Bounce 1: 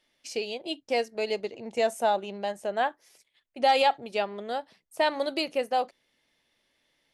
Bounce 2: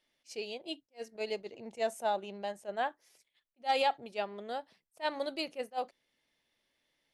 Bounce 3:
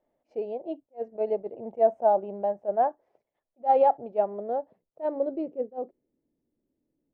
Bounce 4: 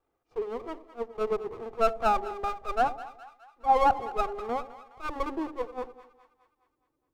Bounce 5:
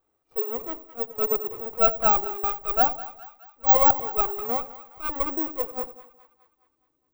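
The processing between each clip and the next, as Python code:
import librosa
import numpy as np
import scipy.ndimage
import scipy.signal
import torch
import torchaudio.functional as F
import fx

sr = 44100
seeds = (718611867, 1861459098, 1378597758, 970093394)

y1 = fx.attack_slew(x, sr, db_per_s=390.0)
y1 = y1 * librosa.db_to_amplitude(-6.5)
y2 = fx.filter_sweep_lowpass(y1, sr, from_hz=680.0, to_hz=310.0, start_s=4.26, end_s=6.41, q=2.1)
y2 = y2 * librosa.db_to_amplitude(5.5)
y3 = fx.lower_of_two(y2, sr, delay_ms=2.5)
y3 = fx.echo_split(y3, sr, split_hz=820.0, low_ms=90, high_ms=208, feedback_pct=52, wet_db=-14)
y4 = (np.kron(y3[::2], np.eye(2)[0]) * 2)[:len(y3)]
y4 = y4 * librosa.db_to_amplitude(1.5)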